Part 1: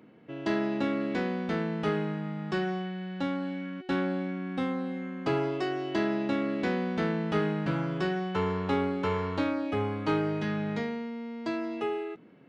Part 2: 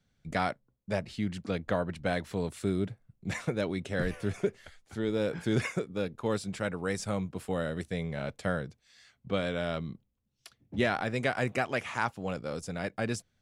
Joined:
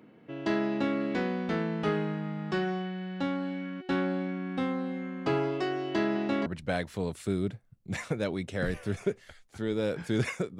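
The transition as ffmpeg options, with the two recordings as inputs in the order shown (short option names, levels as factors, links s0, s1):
-filter_complex "[0:a]asettb=1/sr,asplit=3[s0][s1][s2];[s0]atrim=end=5.684[s3];[s1]atrim=start=5.68:end=6.46,asetpts=PTS-STARTPTS,afade=t=in:d=0.004:c=qsin,afade=t=out:st=0.776:d=0.004:c=qsin,aecho=1:1:472:0.335,atrim=end_sample=34398[s4];[s2]atrim=start=6.456[s5];[s3][s4]acrossfade=d=0.004:c1=hsin:c2=qsin[s6];[s6][s5]acrossfade=d=0.004:c1=qsin:c2=hsin,apad=whole_dur=10.59,atrim=end=10.59,atrim=end=6.462[s7];[1:a]atrim=start=1.828:end=5.96[s8];[s7][s8]acrossfade=d=0.004:c1=hsin:c2=hsin"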